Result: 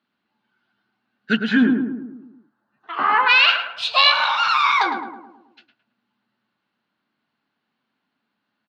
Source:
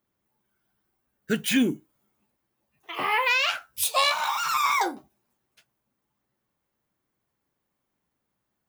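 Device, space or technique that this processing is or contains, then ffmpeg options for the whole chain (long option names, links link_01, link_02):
kitchen radio: -filter_complex "[0:a]asplit=3[link_01][link_02][link_03];[link_01]afade=type=out:start_time=1.36:duration=0.02[link_04];[link_02]highshelf=frequency=1900:width_type=q:width=3:gain=-8,afade=type=in:start_time=1.36:duration=0.02,afade=type=out:start_time=3.28:duration=0.02[link_05];[link_03]afade=type=in:start_time=3.28:duration=0.02[link_06];[link_04][link_05][link_06]amix=inputs=3:normalize=0,highpass=220,equalizer=frequency=230:width_type=q:width=4:gain=7,equalizer=frequency=380:width_type=q:width=4:gain=-5,equalizer=frequency=530:width_type=q:width=4:gain=-7,equalizer=frequency=1500:width_type=q:width=4:gain=7,equalizer=frequency=2800:width_type=q:width=4:gain=7,equalizer=frequency=4200:width_type=q:width=4:gain=9,lowpass=frequency=4300:width=0.5412,lowpass=frequency=4300:width=1.3066,asplit=2[link_07][link_08];[link_08]adelay=108,lowpass=frequency=1300:poles=1,volume=-4dB,asplit=2[link_09][link_10];[link_10]adelay=108,lowpass=frequency=1300:poles=1,volume=0.55,asplit=2[link_11][link_12];[link_12]adelay=108,lowpass=frequency=1300:poles=1,volume=0.55,asplit=2[link_13][link_14];[link_14]adelay=108,lowpass=frequency=1300:poles=1,volume=0.55,asplit=2[link_15][link_16];[link_16]adelay=108,lowpass=frequency=1300:poles=1,volume=0.55,asplit=2[link_17][link_18];[link_18]adelay=108,lowpass=frequency=1300:poles=1,volume=0.55,asplit=2[link_19][link_20];[link_20]adelay=108,lowpass=frequency=1300:poles=1,volume=0.55[link_21];[link_07][link_09][link_11][link_13][link_15][link_17][link_19][link_21]amix=inputs=8:normalize=0,volume=4dB"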